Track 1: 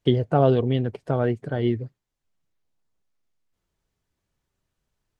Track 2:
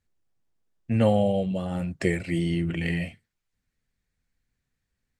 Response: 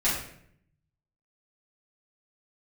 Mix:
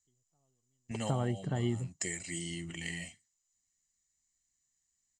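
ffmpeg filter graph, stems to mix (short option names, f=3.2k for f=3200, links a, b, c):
-filter_complex "[0:a]volume=-2dB[a];[1:a]bass=f=250:g=-9,treble=f=4k:g=12,volume=-11dB,asplit=2[b][c];[c]apad=whole_len=229148[d];[a][d]sidechaingate=range=-58dB:threshold=-47dB:ratio=16:detection=peak[e];[e][b]amix=inputs=2:normalize=0,lowpass=f=7.1k:t=q:w=8,aecho=1:1:1:0.55,acompressor=threshold=-34dB:ratio=2"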